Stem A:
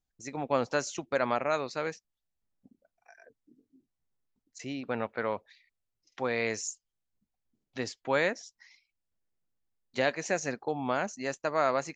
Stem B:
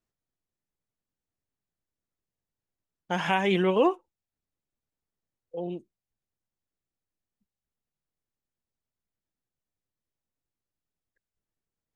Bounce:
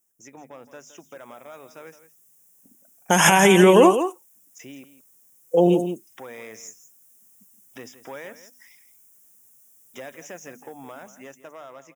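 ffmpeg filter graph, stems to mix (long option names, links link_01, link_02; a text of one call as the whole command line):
ffmpeg -i stem1.wav -i stem2.wav -filter_complex "[0:a]bandreject=frequency=50:width_type=h:width=6,bandreject=frequency=100:width_type=h:width=6,bandreject=frequency=150:width_type=h:width=6,bandreject=frequency=200:width_type=h:width=6,bandreject=frequency=250:width_type=h:width=6,acompressor=threshold=-43dB:ratio=2.5,aeval=exprs='0.0562*(cos(1*acos(clip(val(0)/0.0562,-1,1)))-cos(1*PI/2))+0.00794*(cos(5*acos(clip(val(0)/0.0562,-1,1)))-cos(5*PI/2))+0.00178*(cos(8*acos(clip(val(0)/0.0562,-1,1)))-cos(8*PI/2))':channel_layout=same,volume=-5.5dB,asplit=3[link_01][link_02][link_03];[link_01]atrim=end=4.85,asetpts=PTS-STARTPTS,afade=type=out:start_time=4.846:duration=0.004:curve=hsin[link_04];[link_02]atrim=start=4.85:end=5.8,asetpts=PTS-STARTPTS,volume=0[link_05];[link_03]atrim=start=5.8,asetpts=PTS-STARTPTS,afade=type=in:duration=0.004:curve=hsin[link_06];[link_04][link_05][link_06]concat=n=3:v=0:a=1,asplit=2[link_07][link_08];[link_08]volume=-13.5dB[link_09];[1:a]alimiter=limit=-21.5dB:level=0:latency=1:release=136,dynaudnorm=framelen=200:gausssize=9:maxgain=12dB,aexciter=amount=5.7:drive=8.7:freq=5900,volume=2dB,asplit=2[link_10][link_11];[link_11]volume=-10dB[link_12];[link_09][link_12]amix=inputs=2:normalize=0,aecho=0:1:167:1[link_13];[link_07][link_10][link_13]amix=inputs=3:normalize=0,highpass=140,dynaudnorm=framelen=720:gausssize=5:maxgain=5dB,asuperstop=centerf=4300:order=8:qfactor=3.7" out.wav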